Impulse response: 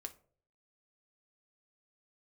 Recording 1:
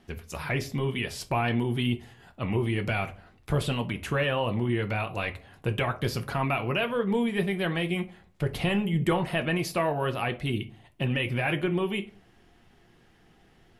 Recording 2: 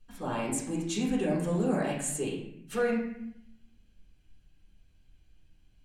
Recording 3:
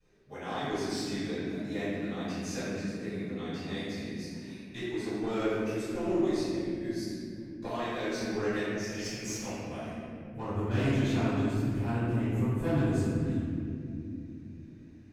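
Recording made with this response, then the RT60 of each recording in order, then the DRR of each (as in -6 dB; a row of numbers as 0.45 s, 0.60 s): 1; 0.50 s, 0.70 s, no single decay rate; 6.0 dB, -6.0 dB, -20.0 dB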